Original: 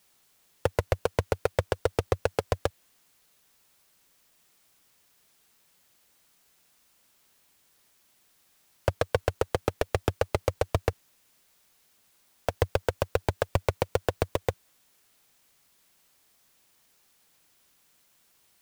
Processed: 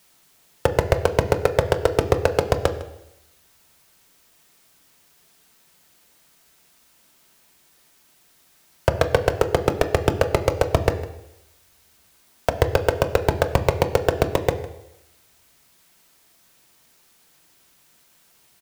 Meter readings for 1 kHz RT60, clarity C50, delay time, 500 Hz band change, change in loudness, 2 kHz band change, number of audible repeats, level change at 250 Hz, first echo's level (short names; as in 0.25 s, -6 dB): 0.85 s, 11.5 dB, 0.155 s, +8.5 dB, +8.0 dB, +8.0 dB, 1, +9.5 dB, -18.0 dB